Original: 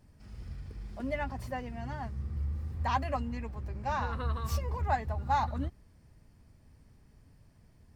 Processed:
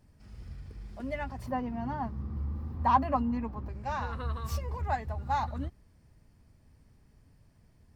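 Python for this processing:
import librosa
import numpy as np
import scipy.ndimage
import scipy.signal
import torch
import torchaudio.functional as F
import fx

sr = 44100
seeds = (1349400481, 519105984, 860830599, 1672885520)

y = fx.graphic_eq_10(x, sr, hz=(250, 1000, 2000, 8000), db=(10, 10, -4, -11), at=(1.46, 3.69))
y = F.gain(torch.from_numpy(y), -1.5).numpy()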